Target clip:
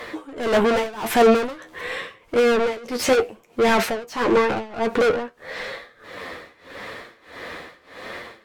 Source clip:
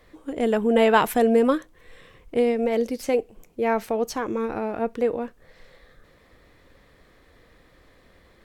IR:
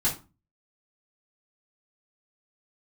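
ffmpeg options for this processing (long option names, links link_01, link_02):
-filter_complex "[0:a]asplit=2[link_01][link_02];[link_02]highpass=frequency=720:poles=1,volume=37dB,asoftclip=type=tanh:threshold=-5dB[link_03];[link_01][link_03]amix=inputs=2:normalize=0,lowpass=frequency=3300:poles=1,volume=-6dB,flanger=delay=8.5:depth=4:regen=43:speed=0.85:shape=sinusoidal,tremolo=f=1.6:d=0.92"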